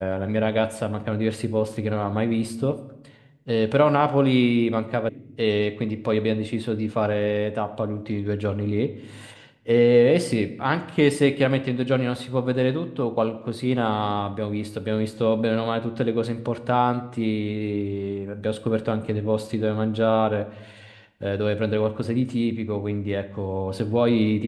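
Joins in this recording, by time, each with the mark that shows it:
0:05.09: cut off before it has died away

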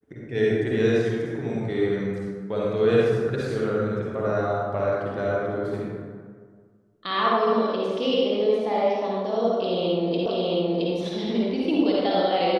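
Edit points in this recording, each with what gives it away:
0:10.26: the same again, the last 0.67 s

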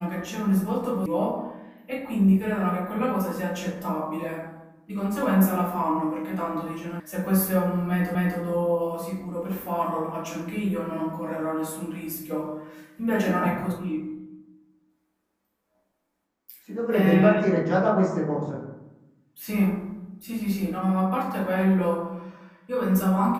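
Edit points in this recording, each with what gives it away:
0:01.06: cut off before it has died away
0:07.00: cut off before it has died away
0:08.15: the same again, the last 0.25 s

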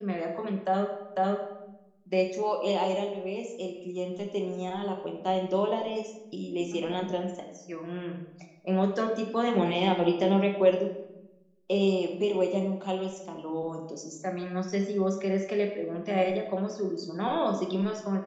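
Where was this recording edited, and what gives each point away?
0:01.16: the same again, the last 0.5 s

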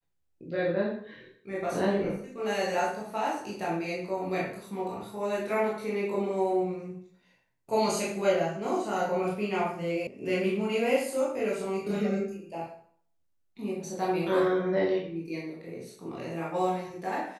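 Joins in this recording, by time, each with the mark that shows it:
0:10.07: cut off before it has died away

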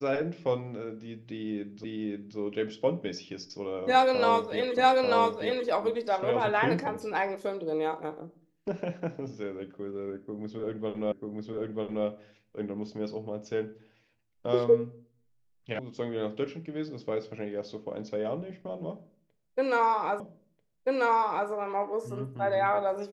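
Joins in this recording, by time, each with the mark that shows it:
0:01.84: the same again, the last 0.53 s
0:04.77: the same again, the last 0.89 s
0:11.12: the same again, the last 0.94 s
0:15.79: cut off before it has died away
0:20.20: the same again, the last 1.29 s

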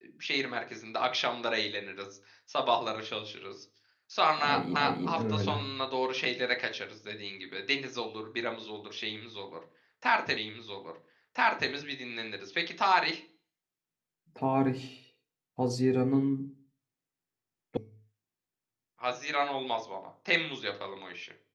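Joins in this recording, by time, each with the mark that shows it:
0:04.76: the same again, the last 0.32 s
0:10.37: the same again, the last 1.33 s
0:17.77: cut off before it has died away

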